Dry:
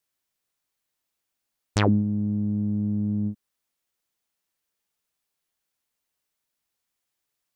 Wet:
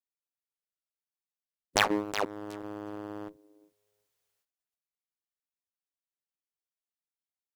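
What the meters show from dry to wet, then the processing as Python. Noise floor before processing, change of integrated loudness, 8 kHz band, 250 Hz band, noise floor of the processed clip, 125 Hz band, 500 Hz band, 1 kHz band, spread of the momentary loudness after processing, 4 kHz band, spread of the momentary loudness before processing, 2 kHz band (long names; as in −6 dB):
−82 dBFS, −6.5 dB, can't be measured, −13.0 dB, below −85 dBFS, −23.5 dB, −0.5 dB, +2.5 dB, 16 LU, +4.5 dB, 8 LU, +5.0 dB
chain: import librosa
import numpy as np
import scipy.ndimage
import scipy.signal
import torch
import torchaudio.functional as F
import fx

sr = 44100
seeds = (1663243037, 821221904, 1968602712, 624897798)

p1 = fx.dynamic_eq(x, sr, hz=260.0, q=2.2, threshold_db=-38.0, ratio=4.0, max_db=-4)
p2 = fx.echo_thinned(p1, sr, ms=368, feedback_pct=20, hz=220.0, wet_db=-13.5)
p3 = fx.spec_gate(p2, sr, threshold_db=-15, keep='weak')
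p4 = fx.fuzz(p3, sr, gain_db=37.0, gate_db=-40.0)
y = p3 + (p4 * librosa.db_to_amplitude(-9.0))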